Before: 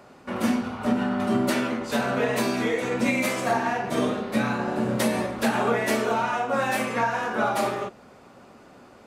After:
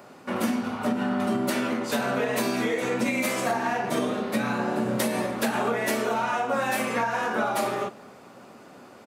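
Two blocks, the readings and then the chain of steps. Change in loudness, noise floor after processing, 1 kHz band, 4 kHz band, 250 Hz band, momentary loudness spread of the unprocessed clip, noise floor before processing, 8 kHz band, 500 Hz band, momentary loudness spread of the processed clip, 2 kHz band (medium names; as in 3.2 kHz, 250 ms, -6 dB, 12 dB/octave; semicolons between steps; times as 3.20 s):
-1.5 dB, -49 dBFS, -1.0 dB, -0.5 dB, -1.5 dB, 3 LU, -50 dBFS, +1.0 dB, -1.5 dB, 2 LU, -1.0 dB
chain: high-pass 120 Hz 12 dB/octave; treble shelf 12 kHz +8.5 dB; compression, threshold -24 dBFS, peak gain reduction 6.5 dB; echo from a far wall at 40 m, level -22 dB; trim +2 dB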